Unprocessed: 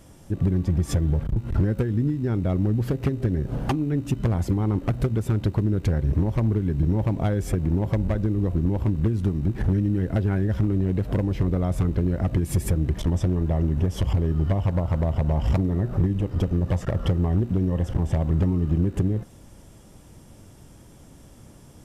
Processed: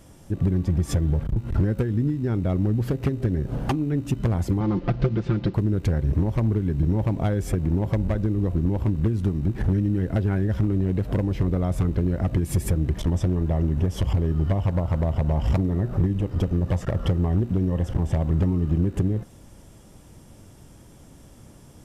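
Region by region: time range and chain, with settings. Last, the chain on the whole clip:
0:04.60–0:05.54: variable-slope delta modulation 64 kbit/s + low-pass filter 4,600 Hz 24 dB per octave + comb filter 5.8 ms, depth 74%
whole clip: no processing

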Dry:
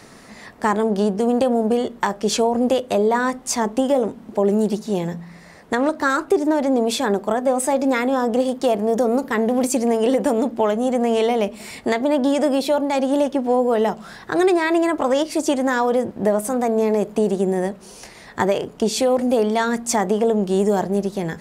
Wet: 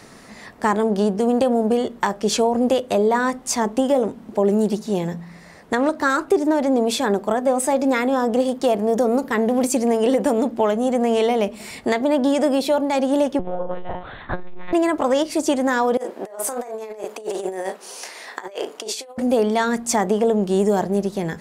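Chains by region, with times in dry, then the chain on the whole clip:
0:13.39–0:14.73: flutter between parallel walls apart 4.4 metres, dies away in 0.37 s + one-pitch LPC vocoder at 8 kHz 180 Hz + saturating transformer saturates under 160 Hz
0:15.97–0:19.18: Bessel high-pass filter 510 Hz, order 4 + double-tracking delay 37 ms −8.5 dB + compressor whose output falls as the input rises −28 dBFS, ratio −0.5
whole clip: no processing

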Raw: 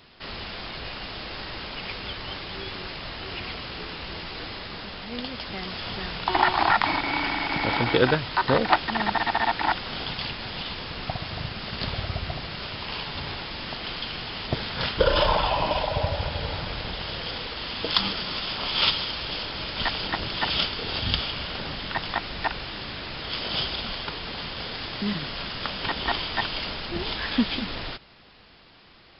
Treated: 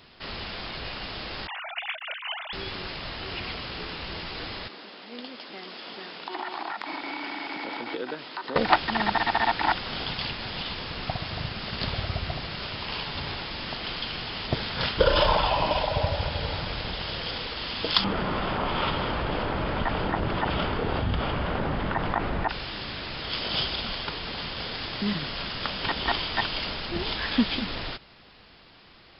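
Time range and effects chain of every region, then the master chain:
0:01.47–0:02.53: three sine waves on the formant tracks + parametric band 200 Hz −7.5 dB 1.6 octaves
0:04.68–0:08.56: downward compressor 5 to 1, threshold −23 dBFS + four-pole ladder high-pass 220 Hz, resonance 30%
0:18.04–0:22.49: low-pass filter 1,300 Hz + envelope flattener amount 70%
whole clip: no processing

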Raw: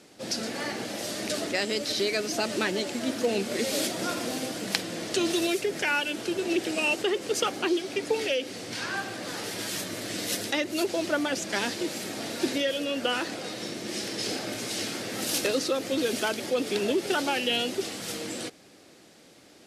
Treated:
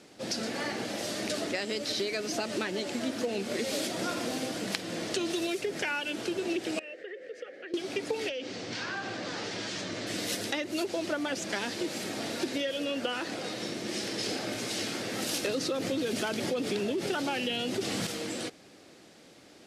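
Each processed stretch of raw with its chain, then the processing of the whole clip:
0:06.79–0:07.74: pair of resonant band-passes 970 Hz, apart 1.8 octaves + downward compressor 2 to 1, threshold −41 dBFS
0:08.29–0:10.07: low-pass filter 6,800 Hz 24 dB per octave + downward compressor 4 to 1, threshold −31 dBFS
0:15.47–0:18.07: parametric band 140 Hz +7 dB 1.4 octaves + envelope flattener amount 50%
whole clip: high-shelf EQ 10,000 Hz −8 dB; downward compressor, threshold −28 dBFS

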